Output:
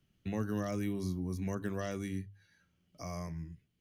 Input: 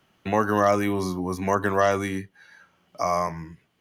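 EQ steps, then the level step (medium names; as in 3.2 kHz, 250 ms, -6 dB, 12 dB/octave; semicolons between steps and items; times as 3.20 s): amplifier tone stack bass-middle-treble 10-0-1; hum notches 50/100 Hz; +9.0 dB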